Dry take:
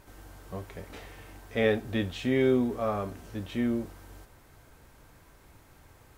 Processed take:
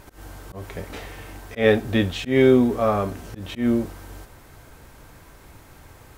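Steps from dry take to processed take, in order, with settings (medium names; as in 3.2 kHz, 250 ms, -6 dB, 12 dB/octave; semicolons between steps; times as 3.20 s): slow attack 134 ms; trim +9 dB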